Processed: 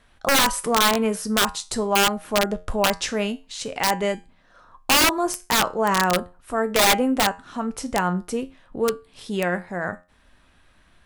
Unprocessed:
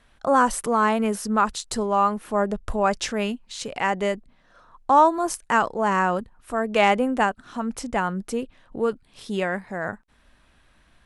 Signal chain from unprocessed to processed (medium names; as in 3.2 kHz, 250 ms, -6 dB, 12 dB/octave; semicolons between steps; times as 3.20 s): feedback comb 89 Hz, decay 0.3 s, harmonics all, mix 60%; integer overflow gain 17.5 dB; trim +6.5 dB